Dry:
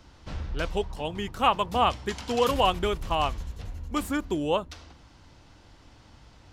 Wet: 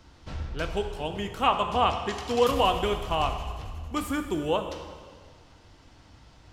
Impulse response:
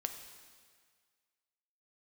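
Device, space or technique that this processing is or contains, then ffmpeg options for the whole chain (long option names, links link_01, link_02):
stairwell: -filter_complex "[1:a]atrim=start_sample=2205[link_01];[0:a][link_01]afir=irnorm=-1:irlink=0,asettb=1/sr,asplit=3[link_02][link_03][link_04];[link_02]atrim=end=1.444[link_05];[link_03]atrim=start=1.44:end=2.13,asetpts=PTS-STARTPTS,afade=type=in:duration=0.004:curve=qsin,afade=type=out:start_time=0.686:duration=0.004:curve=qsin,lowpass=8400[link_06];[link_04]atrim=start=2.126[link_07];[link_05][link_06]acrossfade=duration=0.004:curve1=hsin:curve2=qsin[link_08];[link_08][link_07]acrossfade=duration=0.004:curve1=qsin:curve2=hsin"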